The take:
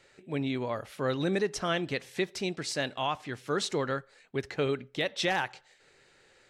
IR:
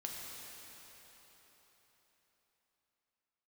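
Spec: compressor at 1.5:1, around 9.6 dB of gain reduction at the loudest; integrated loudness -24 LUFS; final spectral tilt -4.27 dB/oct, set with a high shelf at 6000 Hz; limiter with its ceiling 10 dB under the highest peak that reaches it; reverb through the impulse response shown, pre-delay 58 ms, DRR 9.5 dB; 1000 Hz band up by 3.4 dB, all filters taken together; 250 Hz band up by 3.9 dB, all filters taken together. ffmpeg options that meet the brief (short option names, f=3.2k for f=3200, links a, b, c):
-filter_complex "[0:a]equalizer=f=250:t=o:g=5,equalizer=f=1k:t=o:g=4,highshelf=f=6k:g=4,acompressor=threshold=-50dB:ratio=1.5,alimiter=level_in=10.5dB:limit=-24dB:level=0:latency=1,volume=-10.5dB,asplit=2[a][b];[1:a]atrim=start_sample=2205,adelay=58[c];[b][c]afir=irnorm=-1:irlink=0,volume=-9.5dB[d];[a][d]amix=inputs=2:normalize=0,volume=20dB"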